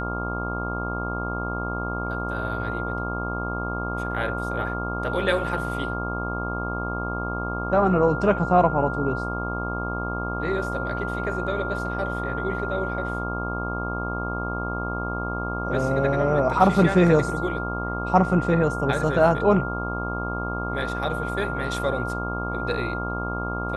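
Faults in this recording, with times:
buzz 60 Hz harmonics 22 -30 dBFS
whine 1.4 kHz -30 dBFS

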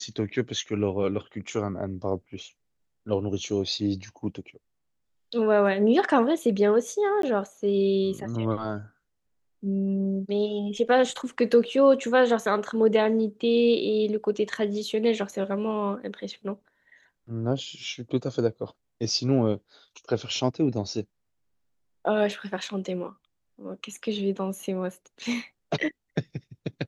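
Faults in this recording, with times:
7.22–7.23 s: dropout 13 ms

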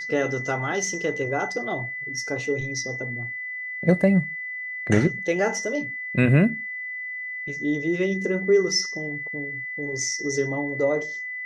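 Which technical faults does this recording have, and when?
whine 2 kHz -30 dBFS

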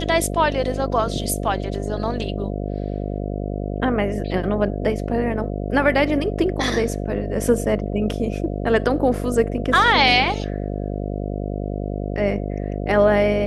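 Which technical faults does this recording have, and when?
buzz 50 Hz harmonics 14 -26 dBFS

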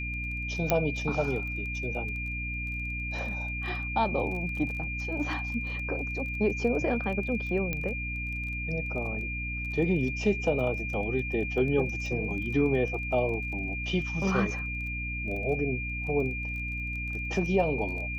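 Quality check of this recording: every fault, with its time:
crackle 19 per s -37 dBFS
hum 60 Hz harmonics 5 -36 dBFS
whine 2.4 kHz -34 dBFS
0.70 s: pop -9 dBFS
7.73 s: pop -17 dBFS

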